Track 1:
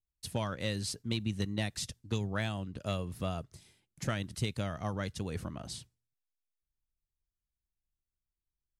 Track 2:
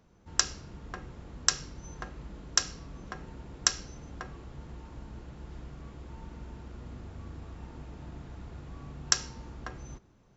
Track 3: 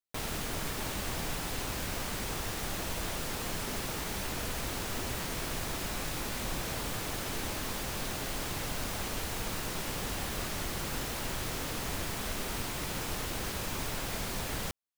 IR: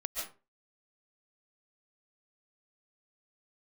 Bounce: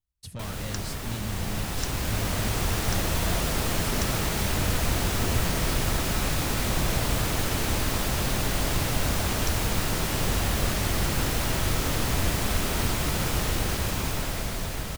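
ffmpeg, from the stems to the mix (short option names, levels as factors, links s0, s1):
-filter_complex "[0:a]asoftclip=type=tanh:threshold=0.0178,volume=1[s0];[1:a]adelay=350,volume=0.224[s1];[2:a]dynaudnorm=f=490:g=7:m=2.82,adelay=250,volume=0.562,asplit=2[s2][s3];[s3]volume=0.531[s4];[3:a]atrim=start_sample=2205[s5];[s4][s5]afir=irnorm=-1:irlink=0[s6];[s0][s1][s2][s6]amix=inputs=4:normalize=0,equalizer=f=76:w=0.51:g=7"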